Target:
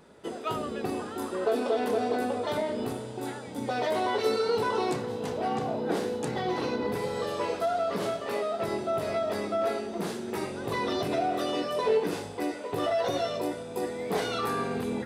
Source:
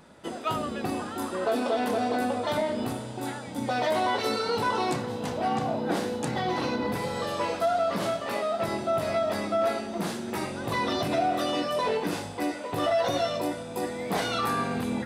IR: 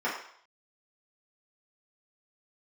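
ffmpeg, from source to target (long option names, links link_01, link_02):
-af "equalizer=frequency=420:width=4.3:gain=10.5,volume=-3.5dB"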